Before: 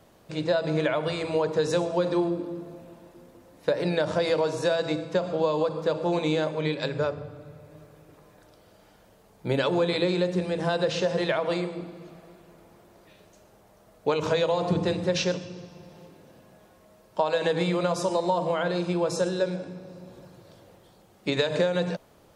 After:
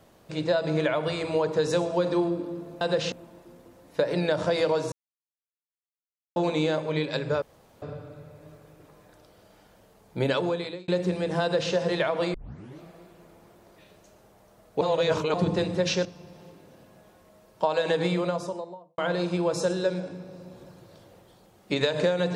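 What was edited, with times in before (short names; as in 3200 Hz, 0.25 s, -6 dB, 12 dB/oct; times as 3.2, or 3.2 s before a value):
4.61–6.05 mute
7.11 insert room tone 0.40 s
9.6–10.17 fade out
10.71–11.02 copy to 2.81
11.63 tape start 0.47 s
14.1–14.63 reverse
15.34–15.61 cut
17.58–18.54 studio fade out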